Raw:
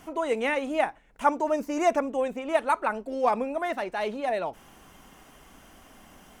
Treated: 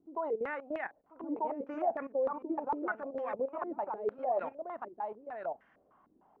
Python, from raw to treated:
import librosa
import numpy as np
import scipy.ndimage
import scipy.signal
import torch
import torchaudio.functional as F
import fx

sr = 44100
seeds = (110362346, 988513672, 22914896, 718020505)

y = fx.highpass(x, sr, hz=180.0, slope=6)
y = fx.level_steps(y, sr, step_db=16)
y = y + 10.0 ** (-3.5 / 20.0) * np.pad(y, (int(1038 * sr / 1000.0), 0))[:len(y)]
y = fx.filter_held_lowpass(y, sr, hz=6.6, low_hz=340.0, high_hz=1800.0)
y = F.gain(torch.from_numpy(y), -8.0).numpy()